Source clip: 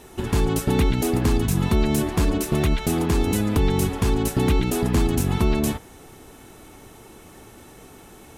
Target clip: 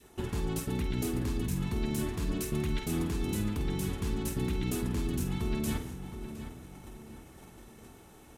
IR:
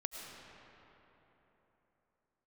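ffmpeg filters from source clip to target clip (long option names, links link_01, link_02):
-filter_complex "[0:a]adynamicequalizer=threshold=0.00794:dfrequency=730:dqfactor=1.2:tfrequency=730:tqfactor=1.2:attack=5:release=100:ratio=0.375:range=3.5:mode=cutabove:tftype=bell,acontrast=50,agate=range=-9dB:threshold=-37dB:ratio=16:detection=peak,areverse,acompressor=threshold=-22dB:ratio=10,areverse,asplit=2[link_01][link_02];[link_02]adelay=49,volume=-8.5dB[link_03];[link_01][link_03]amix=inputs=2:normalize=0,asplit=2[link_04][link_05];[link_05]adelay=713,lowpass=frequency=3100:poles=1,volume=-10dB,asplit=2[link_06][link_07];[link_07]adelay=713,lowpass=frequency=3100:poles=1,volume=0.43,asplit=2[link_08][link_09];[link_09]adelay=713,lowpass=frequency=3100:poles=1,volume=0.43,asplit=2[link_10][link_11];[link_11]adelay=713,lowpass=frequency=3100:poles=1,volume=0.43,asplit=2[link_12][link_13];[link_13]adelay=713,lowpass=frequency=3100:poles=1,volume=0.43[link_14];[link_06][link_08][link_10][link_12][link_14]amix=inputs=5:normalize=0[link_15];[link_04][link_15]amix=inputs=2:normalize=0,volume=-7.5dB"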